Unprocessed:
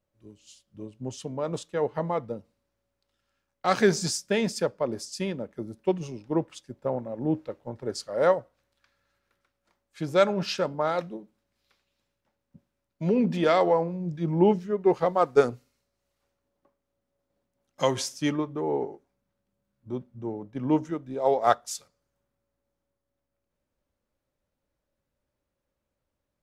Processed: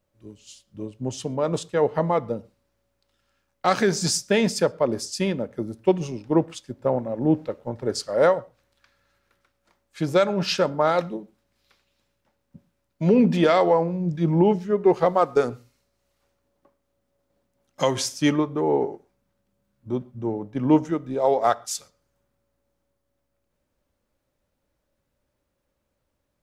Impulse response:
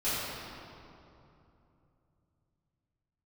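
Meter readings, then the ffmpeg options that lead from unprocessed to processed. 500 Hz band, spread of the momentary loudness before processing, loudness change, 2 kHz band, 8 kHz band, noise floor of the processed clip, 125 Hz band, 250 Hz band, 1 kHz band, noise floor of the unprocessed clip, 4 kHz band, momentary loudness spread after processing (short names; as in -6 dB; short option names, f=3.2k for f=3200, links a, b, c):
+3.5 dB, 15 LU, +4.0 dB, +3.5 dB, +5.5 dB, -76 dBFS, +5.5 dB, +5.5 dB, +3.5 dB, -83 dBFS, +5.0 dB, 12 LU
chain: -filter_complex "[0:a]alimiter=limit=-14.5dB:level=0:latency=1:release=266,asplit=2[a][b];[1:a]atrim=start_sample=2205,atrim=end_sample=6174[c];[b][c]afir=irnorm=-1:irlink=0,volume=-29dB[d];[a][d]amix=inputs=2:normalize=0,volume=6dB"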